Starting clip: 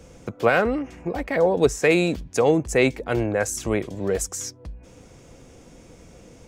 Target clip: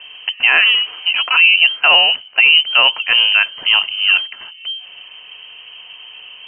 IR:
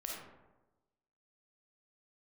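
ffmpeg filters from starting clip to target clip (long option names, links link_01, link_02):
-filter_complex "[0:a]asettb=1/sr,asplit=3[link_01][link_02][link_03];[link_01]atrim=end=1.894[link_04];[link_02]atrim=start=1.89:end=2.49,asetpts=PTS-STARTPTS,afade=type=in:duration=0.004:curve=qsin,afade=type=out:start_time=0.596:duration=0.004:curve=qsin,highpass=200[link_05];[link_03]atrim=start=2.486[link_06];[link_04][link_05]acrossfade=duration=0.004:curve1=hsin:curve2=qsin[link_07];[link_07][link_06]acrossfade=duration=0.004:curve1=qsin:curve2=hsin,lowpass=frequency=2700:width_type=q:width=0.5098,lowpass=frequency=2700:width_type=q:width=0.6013,lowpass=frequency=2700:width_type=q:width=0.9,lowpass=frequency=2700:width_type=q:width=2.563,afreqshift=-3200,alimiter=level_in=11.5dB:limit=-1dB:release=50:level=0:latency=1,volume=-1dB"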